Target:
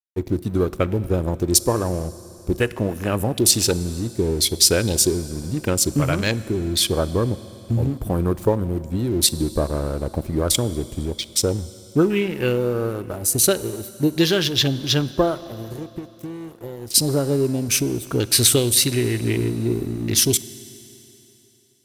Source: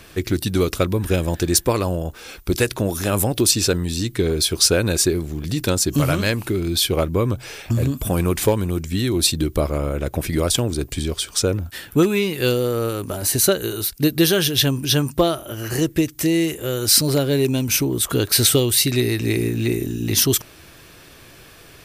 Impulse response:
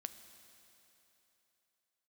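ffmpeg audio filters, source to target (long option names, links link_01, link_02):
-filter_complex "[0:a]asplit=3[link_01][link_02][link_03];[link_01]afade=type=out:start_time=15.62:duration=0.02[link_04];[link_02]acompressor=threshold=-26dB:ratio=20,afade=type=in:start_time=15.62:duration=0.02,afade=type=out:start_time=16.94:duration=0.02[link_05];[link_03]afade=type=in:start_time=16.94:duration=0.02[link_06];[link_04][link_05][link_06]amix=inputs=3:normalize=0,afwtdn=0.0398,highshelf=frequency=8000:gain=6.5,aeval=exprs='sgn(val(0))*max(abs(val(0))-0.01,0)':channel_layout=same,asplit=2[link_07][link_08];[1:a]atrim=start_sample=2205[link_09];[link_08][link_09]afir=irnorm=-1:irlink=0,volume=2.5dB[link_10];[link_07][link_10]amix=inputs=2:normalize=0,volume=-6dB"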